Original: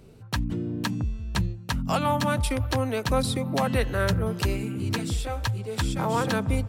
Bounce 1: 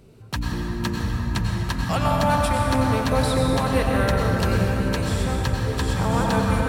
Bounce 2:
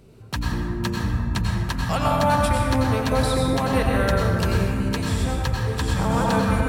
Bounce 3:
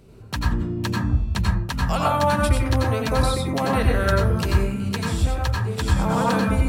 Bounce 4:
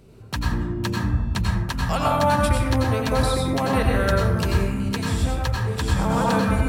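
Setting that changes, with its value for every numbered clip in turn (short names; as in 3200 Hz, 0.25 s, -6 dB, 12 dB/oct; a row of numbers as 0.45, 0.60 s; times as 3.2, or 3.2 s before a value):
plate-style reverb, RT60: 5.3, 2.4, 0.51, 1.1 s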